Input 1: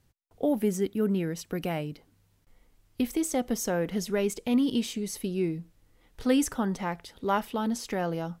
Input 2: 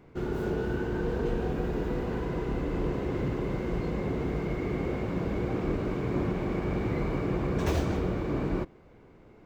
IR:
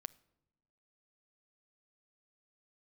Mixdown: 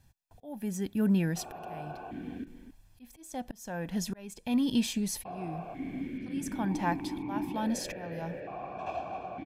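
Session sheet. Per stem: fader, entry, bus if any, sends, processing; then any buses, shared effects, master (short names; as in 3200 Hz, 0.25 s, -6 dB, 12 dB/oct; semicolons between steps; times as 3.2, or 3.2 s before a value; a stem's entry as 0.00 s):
+1.0 dB, 0.00 s, no send, no echo send, auto swell 0.705 s
+2.0 dB, 1.20 s, muted 2.44–5.25, send -7 dB, echo send -10 dB, vowel sequencer 1.1 Hz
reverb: on, pre-delay 7 ms
echo: echo 0.269 s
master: comb 1.2 ms, depth 58%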